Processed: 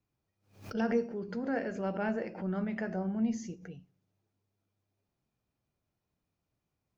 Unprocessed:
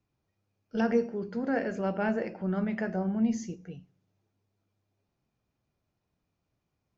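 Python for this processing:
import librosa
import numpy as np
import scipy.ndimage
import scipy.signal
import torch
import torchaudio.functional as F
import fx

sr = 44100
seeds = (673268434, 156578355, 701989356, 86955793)

y = fx.pre_swell(x, sr, db_per_s=130.0)
y = F.gain(torch.from_numpy(y), -4.0).numpy()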